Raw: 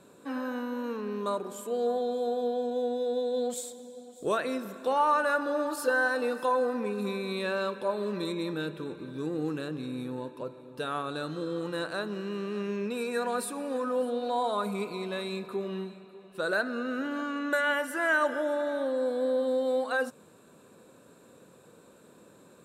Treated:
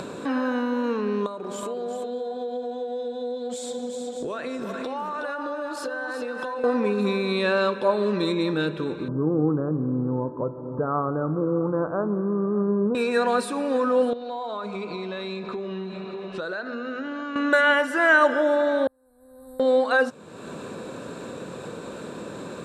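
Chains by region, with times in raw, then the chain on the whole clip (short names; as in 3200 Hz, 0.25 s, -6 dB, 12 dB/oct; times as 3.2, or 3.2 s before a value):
1.26–6.64 compressor, threshold -41 dBFS + echo 0.369 s -6.5 dB
9.08–12.95 steep low-pass 1300 Hz 48 dB/oct + bell 100 Hz +8 dB 1.3 oct
14.13–17.36 LPF 7000 Hz 24 dB/oct + notches 50/100/150/200/250/300/350/400 Hz + compressor 2.5:1, threshold -47 dBFS
18.87–19.6 inverse Chebyshev band-stop 170–6900 Hz + bell 2600 Hz -14 dB 0.24 oct
whole clip: LPF 5900 Hz 12 dB/oct; upward compressor, threshold -33 dBFS; gain +8.5 dB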